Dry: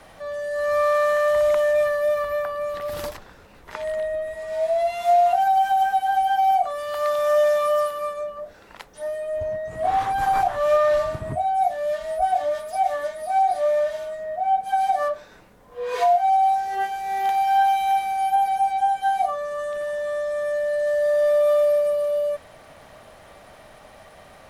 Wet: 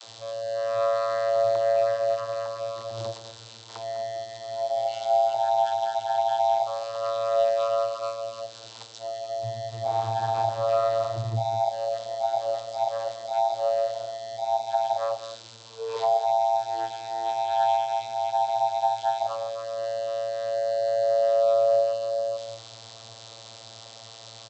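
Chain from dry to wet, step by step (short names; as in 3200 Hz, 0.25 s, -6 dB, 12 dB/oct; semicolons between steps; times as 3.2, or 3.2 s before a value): switching spikes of -22.5 dBFS; on a send: echo 0.202 s -11.5 dB; on the sum: vocoder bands 32, saw 113 Hz; graphic EQ 250/2000/4000 Hz -11/-10/+12 dB; gain -3 dB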